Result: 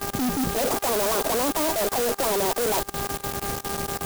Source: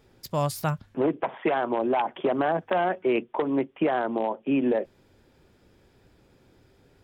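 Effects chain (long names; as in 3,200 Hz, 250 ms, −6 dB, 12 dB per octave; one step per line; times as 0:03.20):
spectral tilt −2 dB per octave
wrong playback speed 45 rpm record played at 78 rpm
inverse Chebyshev low-pass filter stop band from 4,900 Hz, stop band 80 dB
hum with harmonics 400 Hz, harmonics 4, −51 dBFS −1 dB per octave
fuzz pedal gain 46 dB, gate −51 dBFS
output level in coarse steps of 23 dB
brickwall limiter −18.5 dBFS, peak gain reduction 6.5 dB
converter with an unsteady clock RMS 0.12 ms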